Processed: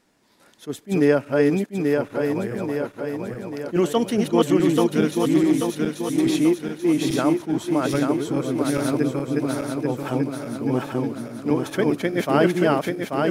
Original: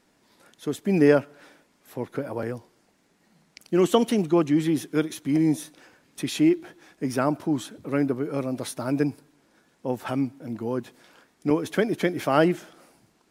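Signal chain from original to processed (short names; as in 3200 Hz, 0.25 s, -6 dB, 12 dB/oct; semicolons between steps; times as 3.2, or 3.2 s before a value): regenerating reverse delay 0.418 s, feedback 73%, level -1 dB; attack slew limiter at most 420 dB/s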